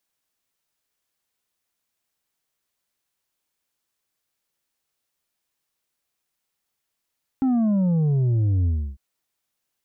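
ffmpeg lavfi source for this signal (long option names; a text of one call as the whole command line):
ffmpeg -f lavfi -i "aevalsrc='0.126*clip((1.55-t)/0.31,0,1)*tanh(1.78*sin(2*PI*270*1.55/log(65/270)*(exp(log(65/270)*t/1.55)-1)))/tanh(1.78)':duration=1.55:sample_rate=44100" out.wav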